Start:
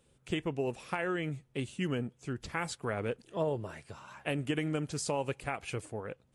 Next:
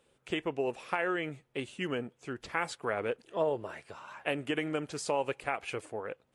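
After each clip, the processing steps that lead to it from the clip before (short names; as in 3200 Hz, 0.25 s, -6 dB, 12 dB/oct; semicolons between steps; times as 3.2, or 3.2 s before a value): tone controls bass -13 dB, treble -7 dB; gain +3.5 dB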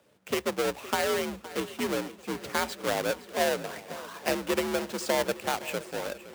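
half-waves squared off; frequency shift +59 Hz; swung echo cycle 0.859 s, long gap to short 1.5:1, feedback 50%, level -16.5 dB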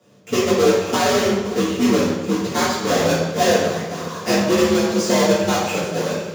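reverb RT60 1.1 s, pre-delay 3 ms, DRR -9.5 dB; gain -4.5 dB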